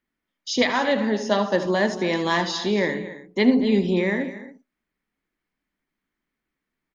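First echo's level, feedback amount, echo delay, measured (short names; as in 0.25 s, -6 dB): -13.5 dB, no steady repeat, 77 ms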